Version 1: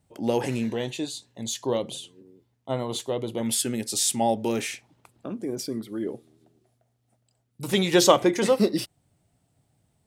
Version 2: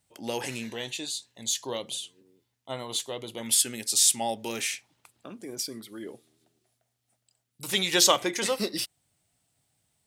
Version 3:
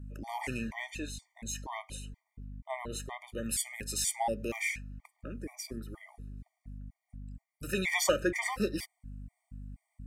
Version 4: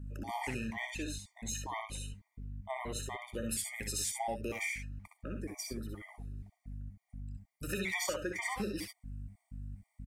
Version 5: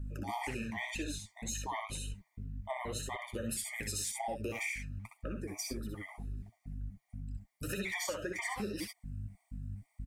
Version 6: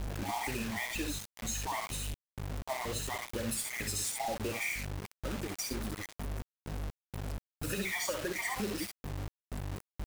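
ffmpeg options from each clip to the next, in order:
ffmpeg -i in.wav -af "tiltshelf=frequency=1100:gain=-7.5,volume=-3.5dB" out.wav
ffmpeg -i in.wav -af "aeval=exprs='val(0)+0.00794*(sin(2*PI*50*n/s)+sin(2*PI*2*50*n/s)/2+sin(2*PI*3*50*n/s)/3+sin(2*PI*4*50*n/s)/4+sin(2*PI*5*50*n/s)/5)':channel_layout=same,highshelf=frequency=2700:width_type=q:width=3:gain=-6.5,afftfilt=real='re*gt(sin(2*PI*2.1*pts/sr)*(1-2*mod(floor(b*sr/1024/610),2)),0)':imag='im*gt(sin(2*PI*2.1*pts/sr)*(1-2*mod(floor(b*sr/1024/610),2)),0)':win_size=1024:overlap=0.75" out.wav
ffmpeg -i in.wav -filter_complex "[0:a]acompressor=threshold=-34dB:ratio=5,asplit=2[link_01][link_02];[link_02]aecho=0:1:62|72:0.447|0.316[link_03];[link_01][link_03]amix=inputs=2:normalize=0" out.wav
ffmpeg -i in.wav -af "acompressor=threshold=-39dB:ratio=3,flanger=delay=1.5:depth=9.6:regen=46:speed=1.9:shape=triangular,volume=7.5dB" out.wav
ffmpeg -i in.wav -af "acrusher=bits=6:mix=0:aa=0.000001,volume=2dB" out.wav

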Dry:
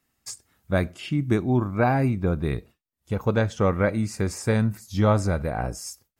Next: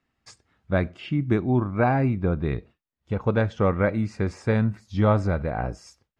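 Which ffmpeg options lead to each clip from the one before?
ffmpeg -i in.wav -af "lowpass=3200" out.wav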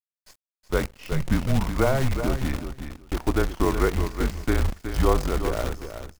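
ffmpeg -i in.wav -af "afreqshift=-140,acrusher=bits=6:dc=4:mix=0:aa=0.000001,aecho=1:1:369|738:0.355|0.0532" out.wav

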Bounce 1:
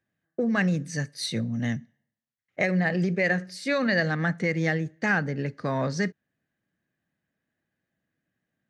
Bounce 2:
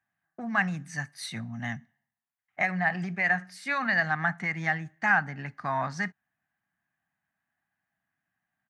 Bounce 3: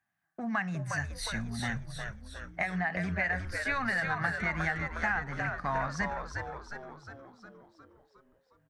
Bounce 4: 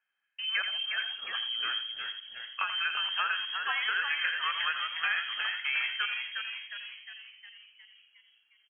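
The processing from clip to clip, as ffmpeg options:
ffmpeg -i in.wav -af "firequalizer=gain_entry='entry(200,0);entry(500,-14);entry(730,13);entry(4300,-1);entry(10000,5)':delay=0.05:min_phase=1,volume=-7.5dB" out.wav
ffmpeg -i in.wav -filter_complex "[0:a]acompressor=threshold=-28dB:ratio=6,asplit=2[link_01][link_02];[link_02]asplit=8[link_03][link_04][link_05][link_06][link_07][link_08][link_09][link_10];[link_03]adelay=359,afreqshift=-97,volume=-5dB[link_11];[link_04]adelay=718,afreqshift=-194,volume=-9.9dB[link_12];[link_05]adelay=1077,afreqshift=-291,volume=-14.8dB[link_13];[link_06]adelay=1436,afreqshift=-388,volume=-19.6dB[link_14];[link_07]adelay=1795,afreqshift=-485,volume=-24.5dB[link_15];[link_08]adelay=2154,afreqshift=-582,volume=-29.4dB[link_16];[link_09]adelay=2513,afreqshift=-679,volume=-34.3dB[link_17];[link_10]adelay=2872,afreqshift=-776,volume=-39.2dB[link_18];[link_11][link_12][link_13][link_14][link_15][link_16][link_17][link_18]amix=inputs=8:normalize=0[link_19];[link_01][link_19]amix=inputs=2:normalize=0" out.wav
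ffmpeg -i in.wav -filter_complex "[0:a]asplit=2[link_01][link_02];[link_02]adelay=85,lowpass=frequency=1600:poles=1,volume=-7dB,asplit=2[link_03][link_04];[link_04]adelay=85,lowpass=frequency=1600:poles=1,volume=0.36,asplit=2[link_05][link_06];[link_06]adelay=85,lowpass=frequency=1600:poles=1,volume=0.36,asplit=2[link_07][link_08];[link_08]adelay=85,lowpass=frequency=1600:poles=1,volume=0.36[link_09];[link_01][link_03][link_05][link_07][link_09]amix=inputs=5:normalize=0,lowpass=frequency=2800:width_type=q:width=0.5098,lowpass=frequency=2800:width_type=q:width=0.6013,lowpass=frequency=2800:width_type=q:width=0.9,lowpass=frequency=2800:width_type=q:width=2.563,afreqshift=-3300" out.wav

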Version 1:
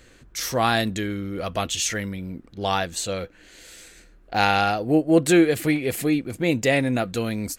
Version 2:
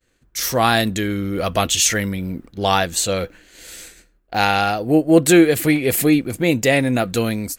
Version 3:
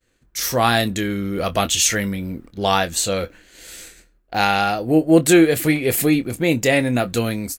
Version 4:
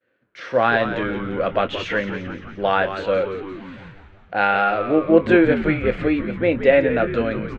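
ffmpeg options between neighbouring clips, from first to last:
ffmpeg -i in.wav -af "agate=range=-33dB:threshold=-42dB:ratio=3:detection=peak,highshelf=frequency=12000:gain=11.5,dynaudnorm=framelen=100:gausssize=7:maxgain=8dB" out.wav
ffmpeg -i in.wav -filter_complex "[0:a]asplit=2[link_01][link_02];[link_02]adelay=25,volume=-12dB[link_03];[link_01][link_03]amix=inputs=2:normalize=0,volume=-1dB" out.wav
ffmpeg -i in.wav -filter_complex "[0:a]highpass=frequency=120:width=0.5412,highpass=frequency=120:width=1.3066,equalizer=frequency=150:width_type=q:width=4:gain=-9,equalizer=frequency=550:width_type=q:width=4:gain=10,equalizer=frequency=1500:width_type=q:width=4:gain=8,lowpass=frequency=2900:width=0.5412,lowpass=frequency=2900:width=1.3066,asplit=2[link_01][link_02];[link_02]asplit=8[link_03][link_04][link_05][link_06][link_07][link_08][link_09][link_10];[link_03]adelay=173,afreqshift=-98,volume=-10dB[link_11];[link_04]adelay=346,afreqshift=-196,volume=-14dB[link_12];[link_05]adelay=519,afreqshift=-294,volume=-18dB[link_13];[link_06]adelay=692,afreqshift=-392,volume=-22dB[link_14];[link_07]adelay=865,afreqshift=-490,volume=-26.1dB[link_15];[link_08]adelay=1038,afreqshift=-588,volume=-30.1dB[link_16];[link_09]adelay=1211,afreqshift=-686,volume=-34.1dB[link_17];[link_10]adelay=1384,afreqshift=-784,volume=-38.1dB[link_18];[link_11][link_12][link_13][link_14][link_15][link_16][link_17][link_18]amix=inputs=8:normalize=0[link_19];[link_01][link_19]amix=inputs=2:normalize=0,volume=-3.5dB" out.wav

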